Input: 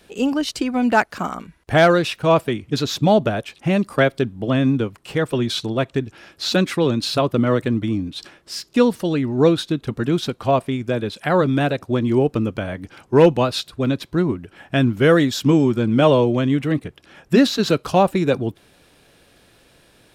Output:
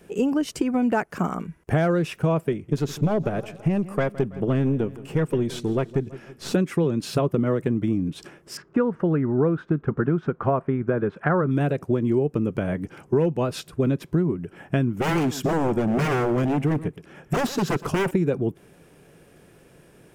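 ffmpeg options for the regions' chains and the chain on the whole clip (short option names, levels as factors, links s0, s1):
-filter_complex "[0:a]asettb=1/sr,asplit=3[s0][s1][s2];[s0]atrim=end=2.524[s3];[s1]atrim=start=2.52:end=6.53,asetpts=PTS-STARTPTS,afade=t=in:d=0.004:c=qsin,afade=t=out:st=4.006:d=0.004:c=qsin,aeval=exprs='(tanh(3.98*val(0)+0.6)-tanh(0.6))/3.98':c=same,aecho=1:1:164|328|492|656:0.1|0.053|0.0281|0.0149,atrim=end_sample=176841[s4];[s2]atrim=start=6.526[s5];[s3][s4]acrossfade=d=0.004:c1=hsin:c2=qsin[s6];[s6][s5]acrossfade=d=0.004:c1=qsin:c2=hsin,asettb=1/sr,asplit=3[s7][s8][s9];[s7]atrim=end=8.574[s10];[s8]atrim=start=8.57:end=11.51,asetpts=PTS-STARTPTS,afade=t=in:d=0.004:c=qsin,afade=t=out:st=2.936:d=0.004:c=qsin,lowpass=f=1400:t=q:w=2.5,aemphasis=mode=production:type=cd[s11];[s9]atrim=start=11.506[s12];[s10][s11]acrossfade=d=0.004:c1=hsin:c2=qsin[s13];[s13][s12]acrossfade=d=0.004:c1=qsin:c2=hsin,asettb=1/sr,asplit=3[s14][s15][s16];[s14]atrim=end=14.924[s17];[s15]atrim=start=14.92:end=18.11,asetpts=PTS-STARTPTS,afade=t=in:d=0.004:c=qsin,afade=t=out:st=3.186:d=0.004:c=qsin,aeval=exprs='0.15*(abs(mod(val(0)/0.15+3,4)-2)-1)':c=same,aecho=1:1:119:0.141,atrim=end_sample=140679[s18];[s16]atrim=start=18.106[s19];[s17][s18]acrossfade=d=0.004:c1=hsin:c2=qsin[s20];[s20][s19]acrossfade=d=0.004:c1=qsin:c2=hsin,equalizer=f=160:t=o:w=0.67:g=10,equalizer=f=400:t=o:w=0.67:g=7,equalizer=f=4000:t=o:w=0.67:g=-12,acompressor=threshold=0.141:ratio=6,volume=0.841"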